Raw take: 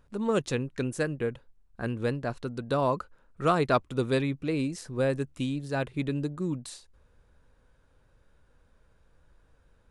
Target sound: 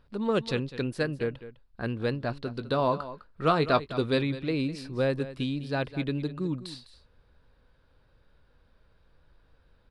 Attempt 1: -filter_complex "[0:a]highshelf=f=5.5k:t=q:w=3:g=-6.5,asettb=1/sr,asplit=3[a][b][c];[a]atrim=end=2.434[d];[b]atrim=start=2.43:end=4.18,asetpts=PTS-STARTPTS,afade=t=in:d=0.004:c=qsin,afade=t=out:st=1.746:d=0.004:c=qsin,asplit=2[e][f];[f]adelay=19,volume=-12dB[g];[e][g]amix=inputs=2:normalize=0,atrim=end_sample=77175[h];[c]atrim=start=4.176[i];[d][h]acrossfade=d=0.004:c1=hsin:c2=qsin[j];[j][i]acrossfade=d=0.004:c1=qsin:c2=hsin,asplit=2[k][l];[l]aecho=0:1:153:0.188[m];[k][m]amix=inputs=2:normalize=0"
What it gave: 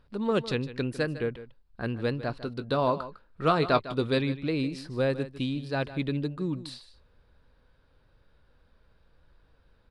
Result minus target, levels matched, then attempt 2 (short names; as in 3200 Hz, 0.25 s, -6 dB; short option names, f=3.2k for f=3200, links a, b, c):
echo 52 ms early
-filter_complex "[0:a]highshelf=f=5.5k:t=q:w=3:g=-6.5,asettb=1/sr,asplit=3[a][b][c];[a]atrim=end=2.434[d];[b]atrim=start=2.43:end=4.18,asetpts=PTS-STARTPTS,afade=t=in:d=0.004:c=qsin,afade=t=out:st=1.746:d=0.004:c=qsin,asplit=2[e][f];[f]adelay=19,volume=-12dB[g];[e][g]amix=inputs=2:normalize=0,atrim=end_sample=77175[h];[c]atrim=start=4.176[i];[d][h]acrossfade=d=0.004:c1=hsin:c2=qsin[j];[j][i]acrossfade=d=0.004:c1=qsin:c2=hsin,asplit=2[k][l];[l]aecho=0:1:205:0.188[m];[k][m]amix=inputs=2:normalize=0"